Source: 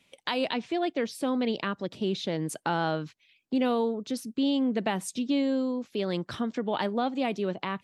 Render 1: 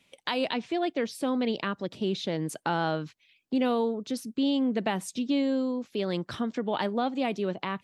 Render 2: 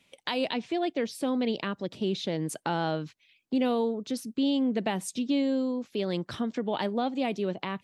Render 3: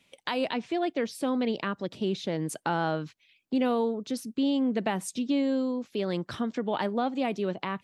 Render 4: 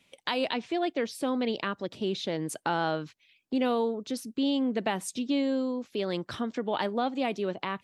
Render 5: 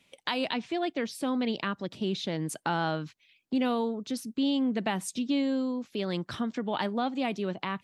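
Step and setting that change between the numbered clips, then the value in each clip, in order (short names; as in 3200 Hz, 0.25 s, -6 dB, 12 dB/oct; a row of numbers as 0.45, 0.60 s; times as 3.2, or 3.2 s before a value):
dynamic EQ, frequency: 9500, 1300, 3700, 170, 480 Hz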